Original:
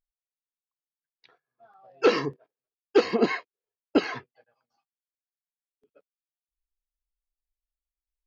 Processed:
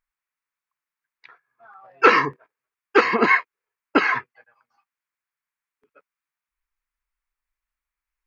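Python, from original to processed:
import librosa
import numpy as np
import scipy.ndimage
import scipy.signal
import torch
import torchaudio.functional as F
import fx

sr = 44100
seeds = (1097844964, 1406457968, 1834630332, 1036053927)

y = fx.band_shelf(x, sr, hz=1500.0, db=13.0, octaves=1.7)
y = y * librosa.db_to_amplitude(1.5)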